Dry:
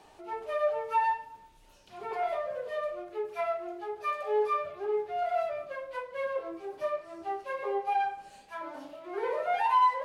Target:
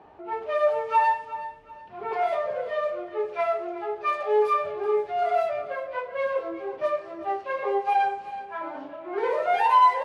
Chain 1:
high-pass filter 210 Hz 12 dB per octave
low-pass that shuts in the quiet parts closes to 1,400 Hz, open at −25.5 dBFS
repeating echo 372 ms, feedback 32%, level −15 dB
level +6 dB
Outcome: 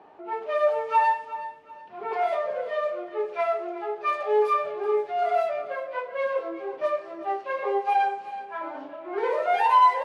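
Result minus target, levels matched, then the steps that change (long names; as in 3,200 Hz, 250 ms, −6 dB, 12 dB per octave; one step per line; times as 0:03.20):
125 Hz band −8.0 dB
change: high-pass filter 59 Hz 12 dB per octave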